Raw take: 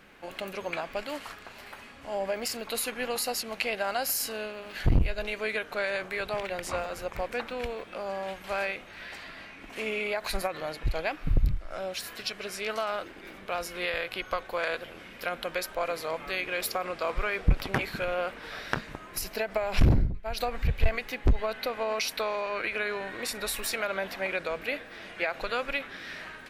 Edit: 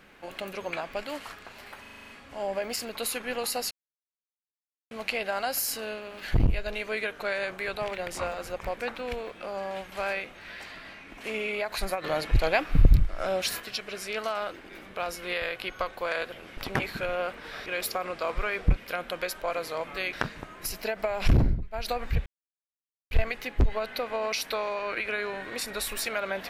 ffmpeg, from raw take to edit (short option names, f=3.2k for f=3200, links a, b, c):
-filter_complex "[0:a]asplit=16[a][b][c][d][e][f][g][h][i][j][k][l][m][n][o][p];[a]atrim=end=1.852[q];[b]atrim=start=1.808:end=1.852[r];[c]atrim=start=1.808:end=1.852[s];[d]atrim=start=1.808:end=1.852[t];[e]atrim=start=1.808:end=1.852[u];[f]atrim=start=1.808:end=1.852[v];[g]atrim=start=1.808:end=1.852[w];[h]atrim=start=1.808:end=3.43,asetpts=PTS-STARTPTS,afade=t=out:st=1.618:d=0.004:c=hsin,apad=pad_dur=1.2[x];[i]atrim=start=3.43:end=10.562,asetpts=PTS-STARTPTS,afade=t=in:d=0.004:c=hsin[y];[j]atrim=start=10.558:end=12.122,asetpts=PTS-STARTPTS,volume=6.5dB[z];[k]atrim=start=12.118:end=15.092[aa];[l]atrim=start=17.558:end=18.652[ab];[m]atrim=start=16.458:end=17.562[ac];[n]atrim=start=15.088:end=16.462[ad];[o]atrim=start=18.648:end=20.78,asetpts=PTS-STARTPTS,afade=t=out:st=2.128:d=0.004:c=hsin,apad=pad_dur=0.85[ae];[p]atrim=start=20.78,asetpts=PTS-STARTPTS,afade=t=in:d=0.004:c=hsin[af];[q][r]acrossfade=d=0.004:c1=hsin:c2=hsin[ag];[ag][s]acrossfade=d=0.004:c1=hsin:c2=hsin[ah];[ah][t]acrossfade=d=0.004:c1=hsin:c2=hsin[ai];[ai][u]acrossfade=d=0.004:c1=hsin:c2=hsin[aj];[aj][v]acrossfade=d=0.004:c1=hsin:c2=hsin[ak];[ak][w]acrossfade=d=0.004:c1=hsin:c2=hsin[al];[x][y]concat=n=2:v=0:a=1[am];[al][am]acrossfade=d=0.004:c1=hsin:c2=hsin[an];[an][z]acrossfade=d=0.004:c1=hsin:c2=hsin[ao];[ao][aa]acrossfade=d=0.004:c1=hsin:c2=hsin[ap];[ap][ab]acrossfade=d=0.004:c1=hsin:c2=hsin[aq];[aq][ac]acrossfade=d=0.004:c1=hsin:c2=hsin[ar];[ar][ad]acrossfade=d=0.004:c1=hsin:c2=hsin[as];[ae][af]concat=n=2:v=0:a=1[at];[as][at]acrossfade=d=0.004:c1=hsin:c2=hsin"